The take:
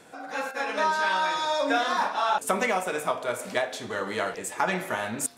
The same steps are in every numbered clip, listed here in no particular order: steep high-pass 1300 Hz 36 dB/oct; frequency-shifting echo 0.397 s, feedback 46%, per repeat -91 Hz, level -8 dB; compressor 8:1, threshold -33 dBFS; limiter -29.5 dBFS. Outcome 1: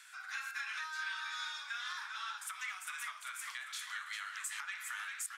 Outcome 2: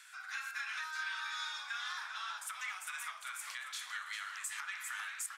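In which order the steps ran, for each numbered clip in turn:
frequency-shifting echo > compressor > steep high-pass > limiter; compressor > steep high-pass > frequency-shifting echo > limiter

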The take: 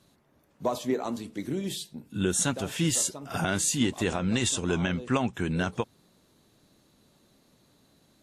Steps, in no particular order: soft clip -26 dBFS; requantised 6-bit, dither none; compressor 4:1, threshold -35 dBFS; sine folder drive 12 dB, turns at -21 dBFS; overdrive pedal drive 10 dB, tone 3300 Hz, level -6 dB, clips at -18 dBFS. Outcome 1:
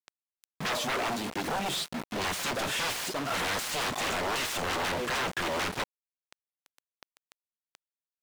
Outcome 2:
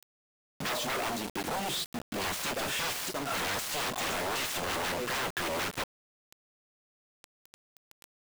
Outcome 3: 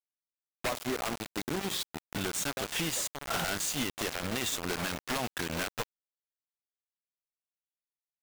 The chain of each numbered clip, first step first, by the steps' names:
sine folder > soft clip > compressor > requantised > overdrive pedal; sine folder > compressor > soft clip > overdrive pedal > requantised; compressor > overdrive pedal > requantised > sine folder > soft clip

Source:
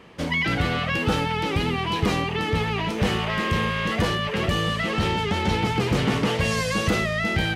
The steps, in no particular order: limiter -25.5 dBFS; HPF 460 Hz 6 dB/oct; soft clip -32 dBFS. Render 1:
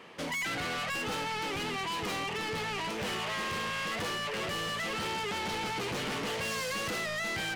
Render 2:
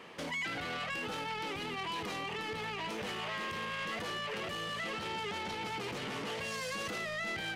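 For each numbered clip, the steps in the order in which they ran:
HPF > soft clip > limiter; limiter > HPF > soft clip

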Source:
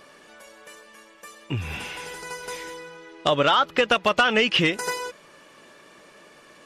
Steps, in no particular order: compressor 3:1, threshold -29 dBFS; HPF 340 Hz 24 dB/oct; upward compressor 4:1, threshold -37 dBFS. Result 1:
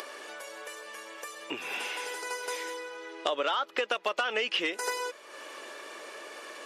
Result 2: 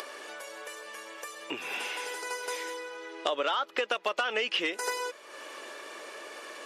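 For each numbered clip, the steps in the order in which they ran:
upward compressor > HPF > compressor; HPF > upward compressor > compressor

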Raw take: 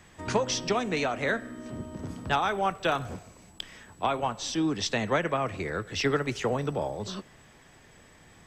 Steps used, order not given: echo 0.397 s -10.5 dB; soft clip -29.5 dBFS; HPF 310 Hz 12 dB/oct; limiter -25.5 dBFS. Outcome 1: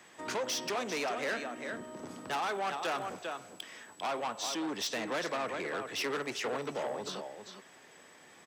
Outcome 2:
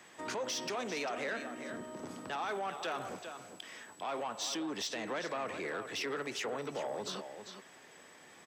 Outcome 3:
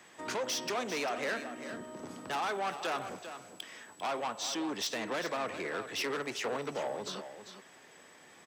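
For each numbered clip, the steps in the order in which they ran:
echo > soft clip > limiter > HPF; limiter > echo > soft clip > HPF; soft clip > HPF > limiter > echo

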